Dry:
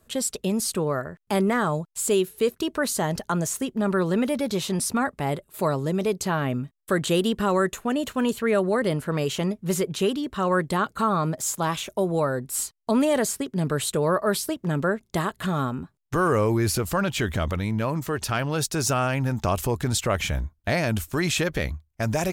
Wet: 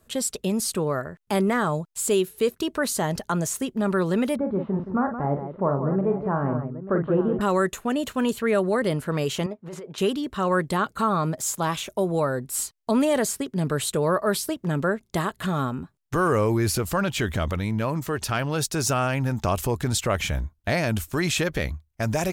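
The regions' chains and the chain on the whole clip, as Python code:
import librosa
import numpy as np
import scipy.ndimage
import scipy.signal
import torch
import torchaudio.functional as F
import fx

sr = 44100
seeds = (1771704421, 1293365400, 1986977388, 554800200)

y = fx.chain(x, sr, fx.lowpass(hz=1300.0, slope=24),
    fx.echo_multitap(ms=(42, 171, 888), db=(-7.0, -9.0, -12.5)), at=(4.36, 7.41))
y = fx.chain(y, sr, fx.bandpass_q(hz=800.0, q=0.86),
    fx.over_compress(threshold_db=-34.0, ratio=-1.0), at=(9.46, 9.98))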